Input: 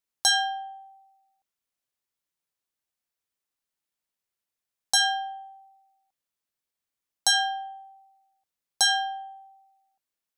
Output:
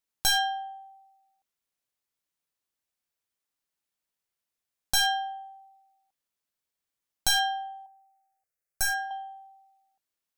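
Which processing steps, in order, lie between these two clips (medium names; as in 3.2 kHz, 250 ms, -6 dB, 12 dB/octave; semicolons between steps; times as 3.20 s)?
one-sided wavefolder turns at -22 dBFS; 7.86–9.11 s: static phaser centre 940 Hz, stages 6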